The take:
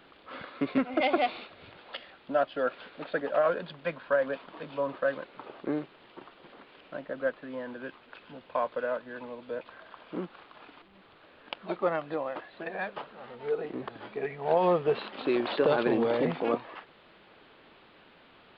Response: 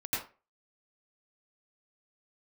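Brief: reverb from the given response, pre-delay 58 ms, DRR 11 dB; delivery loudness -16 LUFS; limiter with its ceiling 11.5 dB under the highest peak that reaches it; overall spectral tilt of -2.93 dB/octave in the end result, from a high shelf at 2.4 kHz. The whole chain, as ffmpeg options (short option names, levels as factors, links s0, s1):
-filter_complex "[0:a]highshelf=f=2400:g=6.5,alimiter=limit=0.0794:level=0:latency=1,asplit=2[s0][s1];[1:a]atrim=start_sample=2205,adelay=58[s2];[s1][s2]afir=irnorm=-1:irlink=0,volume=0.15[s3];[s0][s3]amix=inputs=2:normalize=0,volume=8.41"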